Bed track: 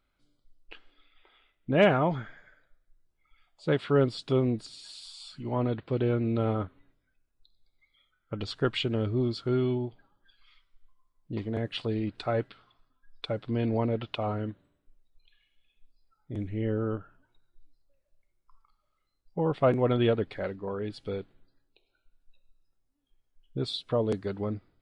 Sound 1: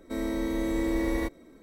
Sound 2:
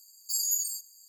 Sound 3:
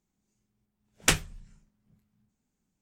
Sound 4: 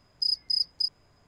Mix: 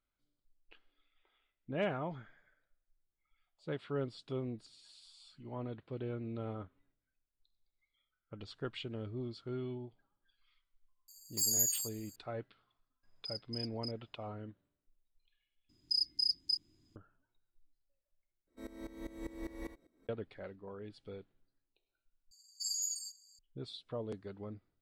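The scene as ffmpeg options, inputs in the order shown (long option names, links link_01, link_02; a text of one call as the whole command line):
ffmpeg -i bed.wav -i cue0.wav -i cue1.wav -i cue2.wav -i cue3.wav -filter_complex "[2:a]asplit=2[link_01][link_02];[4:a]asplit=2[link_03][link_04];[0:a]volume=-13.5dB[link_05];[link_04]firequalizer=gain_entry='entry(170,0);entry(320,12);entry(470,-17);entry(1200,-15);entry(3500,2)':delay=0.05:min_phase=1[link_06];[1:a]aeval=exprs='val(0)*pow(10,-18*if(lt(mod(-5*n/s,1),2*abs(-5)/1000),1-mod(-5*n/s,1)/(2*abs(-5)/1000),(mod(-5*n/s,1)-2*abs(-5)/1000)/(1-2*abs(-5)/1000))/20)':channel_layout=same[link_07];[link_02]lowpass=5200[link_08];[link_05]asplit=4[link_09][link_10][link_11][link_12];[link_09]atrim=end=15.694[link_13];[link_06]atrim=end=1.27,asetpts=PTS-STARTPTS,volume=-8dB[link_14];[link_10]atrim=start=16.956:end=18.474[link_15];[link_07]atrim=end=1.62,asetpts=PTS-STARTPTS,volume=-11.5dB[link_16];[link_11]atrim=start=20.086:end=22.314[link_17];[link_08]atrim=end=1.08,asetpts=PTS-STARTPTS,volume=-1.5dB[link_18];[link_12]atrim=start=23.386[link_19];[link_01]atrim=end=1.08,asetpts=PTS-STARTPTS,volume=-2.5dB,afade=type=in:duration=0.004:curve=hsin,afade=type=out:start_time=1.076:duration=0.004:curve=hsin,adelay=11080[link_20];[link_03]atrim=end=1.27,asetpts=PTS-STARTPTS,volume=-17.5dB,afade=type=in:duration=0.004:curve=hsin,afade=type=out:start_time=1.266:duration=0.004:curve=hsin,adelay=13030[link_21];[link_13][link_14]acrossfade=duration=0.004:curve1=hsin:curve2=hsin[link_22];[link_22][link_15]acrossfade=duration=0.004:curve1=hsin:curve2=hsin[link_23];[link_23][link_16]acrossfade=duration=0.004:curve1=hsin:curve2=hsin[link_24];[link_24][link_17]acrossfade=duration=0.004:curve1=hsin:curve2=hsin[link_25];[link_25][link_18]acrossfade=duration=0.004:curve1=hsin:curve2=hsin[link_26];[link_26][link_19]acrossfade=duration=0.004:curve1=hsin:curve2=hsin[link_27];[link_27][link_20][link_21]amix=inputs=3:normalize=0" out.wav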